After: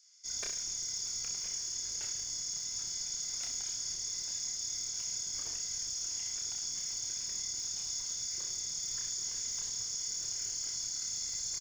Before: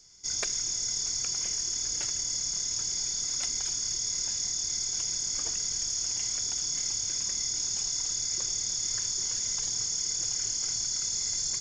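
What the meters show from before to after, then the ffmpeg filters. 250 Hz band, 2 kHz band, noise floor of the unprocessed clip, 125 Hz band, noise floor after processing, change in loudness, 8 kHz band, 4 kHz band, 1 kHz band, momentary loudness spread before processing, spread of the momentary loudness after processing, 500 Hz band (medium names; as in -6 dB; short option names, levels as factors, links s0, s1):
no reading, -7.0 dB, -33 dBFS, -9.5 dB, -40 dBFS, -6.5 dB, -6.5 dB, -6.5 dB, -8.0 dB, 1 LU, 1 LU, -8.5 dB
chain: -filter_complex "[0:a]asoftclip=type=tanh:threshold=0.0891,aecho=1:1:30|63|99.3|139.2|183.2:0.631|0.398|0.251|0.158|0.1,acrossover=split=1200[s0][s1];[s0]aeval=exprs='sgn(val(0))*max(abs(val(0))-0.00126,0)':c=same[s2];[s2][s1]amix=inputs=2:normalize=0,volume=0.398"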